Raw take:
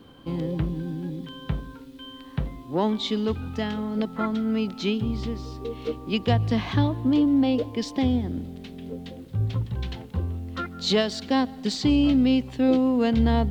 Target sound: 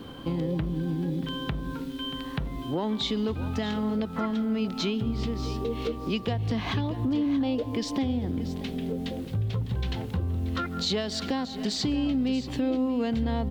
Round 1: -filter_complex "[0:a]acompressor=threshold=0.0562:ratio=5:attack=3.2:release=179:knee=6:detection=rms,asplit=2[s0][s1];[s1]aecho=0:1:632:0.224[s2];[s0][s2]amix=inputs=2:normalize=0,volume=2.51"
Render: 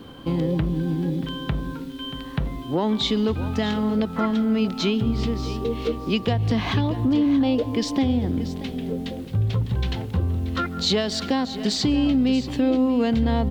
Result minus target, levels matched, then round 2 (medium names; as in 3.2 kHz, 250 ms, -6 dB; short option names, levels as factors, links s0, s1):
compression: peak gain reduction -6.5 dB
-filter_complex "[0:a]acompressor=threshold=0.0224:ratio=5:attack=3.2:release=179:knee=6:detection=rms,asplit=2[s0][s1];[s1]aecho=0:1:632:0.224[s2];[s0][s2]amix=inputs=2:normalize=0,volume=2.51"